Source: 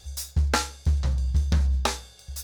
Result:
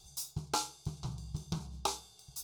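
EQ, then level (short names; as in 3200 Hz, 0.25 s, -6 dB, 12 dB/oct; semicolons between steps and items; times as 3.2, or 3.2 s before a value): fixed phaser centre 360 Hz, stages 8; -5.5 dB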